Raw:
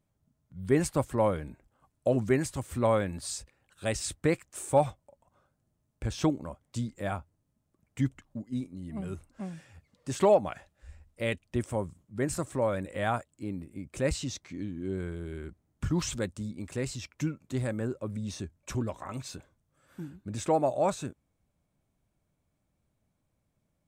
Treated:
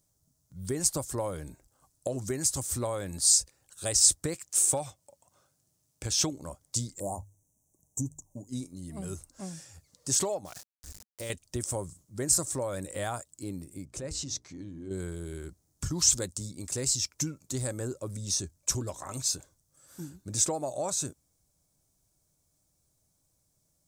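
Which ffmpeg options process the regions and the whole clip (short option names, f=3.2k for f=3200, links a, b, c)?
-filter_complex "[0:a]asettb=1/sr,asplit=3[a][b][c];[a]atrim=end=4.344[d];[b]atrim=start=4.34:end=6.33,asetpts=PTS-STARTPTS,afade=t=in:d=0.004:c=qsin,afade=t=out:st=1.986:d=0.004:c=qsin,highpass=90,equalizer=f=2.6k:w=1.3:g=6[e];[c]atrim=start=6.326[f];[d][e]acrossfade=d=0.004:c1=hsin:c2=qsin[g];[g][f]acrossfade=d=0.004:c1=qsin:c2=hsin,asettb=1/sr,asplit=3[h][i][j];[h]atrim=end=7.004[k];[i]atrim=start=7:end=8.49,asetpts=PTS-STARTPTS,afade=t=in:d=0.004:c=qsin,afade=t=out:st=1.486:d=0.004:c=qsin,asuperstop=centerf=2500:order=20:qfactor=0.51,equalizer=f=3k:t=o:w=1.8:g=7.5,bandreject=f=50:t=h:w=6,bandreject=f=100:t=h:w=6,bandreject=f=150:t=h:w=6[l];[j]atrim=start=8.486[m];[k][l]acrossfade=d=0.004:c1=hsin:c2=qsin[n];[n][m]acrossfade=d=0.004:c1=qsin:c2=hsin,asettb=1/sr,asplit=3[o][p][q];[o]atrim=end=10.454[r];[p]atrim=start=10.45:end=11.3,asetpts=PTS-STARTPTS,afade=t=in:d=0.004:c=qsin,afade=t=out:st=0.846:d=0.004:c=qsin,acompressor=threshold=-36dB:ratio=3:attack=3.2:release=140:knee=1:detection=peak,aeval=exprs='val(0)*gte(abs(val(0)),0.00355)':c=same[s];[q]atrim=start=11.296[t];[r][s]acrossfade=d=0.004:c1=hsin:c2=qsin[u];[u][t]acrossfade=d=0.004:c1=qsin:c2=hsin,asettb=1/sr,asplit=3[v][w][x];[v]atrim=end=13.854[y];[w]atrim=start=13.85:end=14.91,asetpts=PTS-STARTPTS,afade=t=in:d=0.004:c=qsin,afade=t=out:st=1.056:d=0.004:c=qsin,lowpass=f=2.2k:p=1,acompressor=threshold=-37dB:ratio=2.5:attack=3.2:release=140:knee=1:detection=peak,bandreject=f=60:t=h:w=6,bandreject=f=120:t=h:w=6,bandreject=f=180:t=h:w=6,bandreject=f=240:t=h:w=6,bandreject=f=300:t=h:w=6,bandreject=f=360:t=h:w=6,bandreject=f=420:t=h:w=6,bandreject=f=480:t=h:w=6[z];[x]atrim=start=14.906[aa];[y][z]acrossfade=d=0.004:c1=hsin:c2=qsin[ab];[ab][aa]acrossfade=d=0.004:c1=qsin:c2=hsin,equalizer=f=220:t=o:w=0.2:g=-10.5,acompressor=threshold=-29dB:ratio=6,highshelf=f=3.9k:t=q:w=1.5:g=14"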